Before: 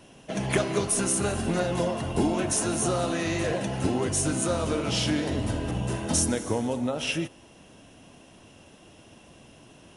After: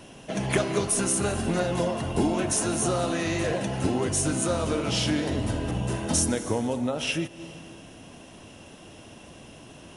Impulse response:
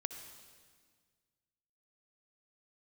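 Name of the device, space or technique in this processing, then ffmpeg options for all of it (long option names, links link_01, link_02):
ducked reverb: -filter_complex "[0:a]asplit=3[link_01][link_02][link_03];[1:a]atrim=start_sample=2205[link_04];[link_02][link_04]afir=irnorm=-1:irlink=0[link_05];[link_03]apad=whole_len=439298[link_06];[link_05][link_06]sidechaincompress=threshold=-49dB:ratio=8:attack=16:release=144,volume=1dB[link_07];[link_01][link_07]amix=inputs=2:normalize=0"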